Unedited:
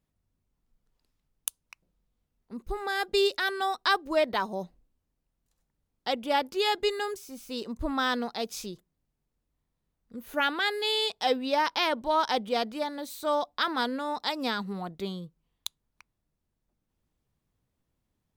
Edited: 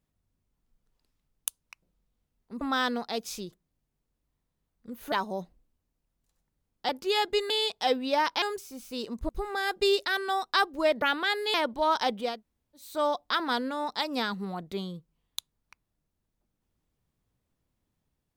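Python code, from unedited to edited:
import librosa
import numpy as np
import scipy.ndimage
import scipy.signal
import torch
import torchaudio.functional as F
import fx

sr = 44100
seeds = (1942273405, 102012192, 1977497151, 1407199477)

y = fx.edit(x, sr, fx.swap(start_s=2.61, length_s=1.73, other_s=7.87, other_length_s=2.51),
    fx.cut(start_s=6.11, length_s=0.28),
    fx.move(start_s=10.9, length_s=0.92, to_s=7.0),
    fx.room_tone_fill(start_s=12.59, length_s=0.54, crossfade_s=0.24), tone=tone)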